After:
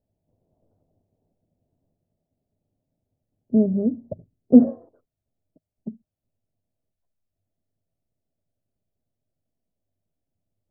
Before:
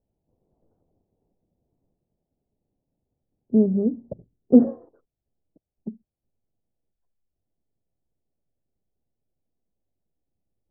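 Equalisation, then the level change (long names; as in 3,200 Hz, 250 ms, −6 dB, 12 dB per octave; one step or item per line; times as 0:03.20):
thirty-one-band graphic EQ 100 Hz +11 dB, 160 Hz +5 dB, 250 Hz +5 dB, 630 Hz +9 dB
−3.0 dB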